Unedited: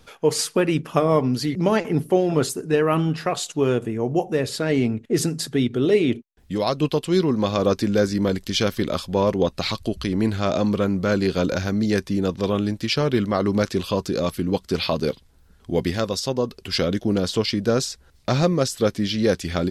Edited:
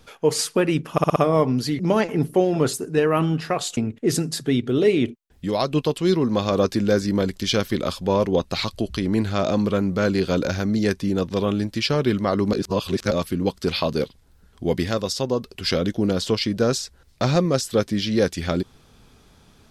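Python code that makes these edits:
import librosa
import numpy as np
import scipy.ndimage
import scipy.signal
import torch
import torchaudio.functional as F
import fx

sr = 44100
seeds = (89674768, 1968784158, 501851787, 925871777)

y = fx.edit(x, sr, fx.stutter(start_s=0.92, slice_s=0.06, count=5),
    fx.cut(start_s=3.53, length_s=1.31),
    fx.reverse_span(start_s=13.6, length_s=0.58), tone=tone)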